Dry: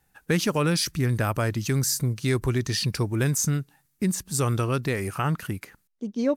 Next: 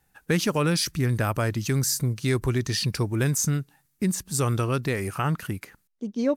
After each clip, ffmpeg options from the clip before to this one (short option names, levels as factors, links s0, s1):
-af anull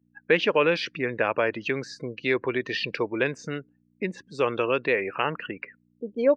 -af "aeval=exprs='val(0)+0.00447*(sin(2*PI*60*n/s)+sin(2*PI*2*60*n/s)/2+sin(2*PI*3*60*n/s)/3+sin(2*PI*4*60*n/s)/4+sin(2*PI*5*60*n/s)/5)':c=same,afftdn=nr=36:nf=-43,highpass=460,equalizer=f=490:t=q:w=4:g=5,equalizer=f=750:t=q:w=4:g=-5,equalizer=f=1300:t=q:w=4:g=-7,equalizer=f=2700:t=q:w=4:g=5,lowpass=f=3100:w=0.5412,lowpass=f=3100:w=1.3066,volume=2"